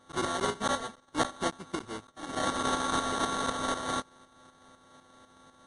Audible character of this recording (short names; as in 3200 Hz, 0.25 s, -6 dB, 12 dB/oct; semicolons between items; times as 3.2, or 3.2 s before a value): a buzz of ramps at a fixed pitch in blocks of 32 samples; tremolo saw up 4 Hz, depth 60%; aliases and images of a low sample rate 2500 Hz, jitter 0%; MP3